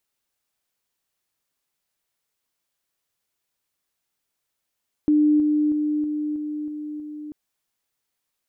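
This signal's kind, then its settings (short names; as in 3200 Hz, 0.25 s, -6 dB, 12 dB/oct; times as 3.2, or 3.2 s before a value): level ladder 300 Hz -14 dBFS, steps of -3 dB, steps 7, 0.32 s 0.00 s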